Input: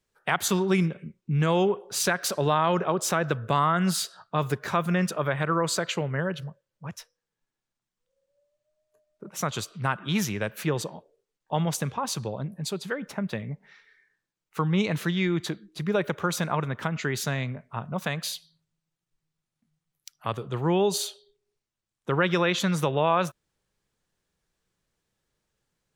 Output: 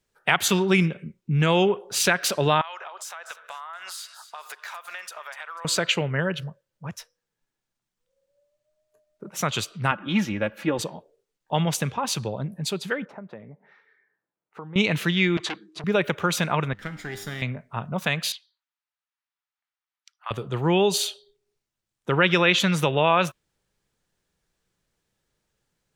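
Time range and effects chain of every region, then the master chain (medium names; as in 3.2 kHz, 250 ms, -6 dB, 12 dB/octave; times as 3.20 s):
2.61–5.65 s: high-pass 760 Hz 24 dB/octave + compression 10:1, threshold -36 dBFS + feedback echo behind a high-pass 246 ms, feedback 31%, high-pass 2 kHz, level -11.5 dB
9.91–10.79 s: low-pass 1.3 kHz 6 dB/octave + comb 3.6 ms, depth 70%
13.05–14.76 s: compression 2:1, threshold -44 dBFS + band-pass filter 880 Hz, Q 0.67 + tilt shelf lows +5.5 dB, about 1.2 kHz
15.37–15.84 s: cabinet simulation 160–8900 Hz, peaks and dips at 210 Hz -8 dB, 320 Hz +6 dB, 1.1 kHz +9 dB + transformer saturation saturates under 2.7 kHz
16.73–17.42 s: comb filter that takes the minimum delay 0.56 ms + feedback comb 100 Hz, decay 0.86 s, mix 70%
18.32–20.31 s: high-pass 950 Hz 24 dB/octave + tape spacing loss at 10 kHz 21 dB
whole clip: band-stop 1.1 kHz, Q 25; dynamic bell 2.7 kHz, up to +8 dB, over -46 dBFS, Q 1.5; trim +2.5 dB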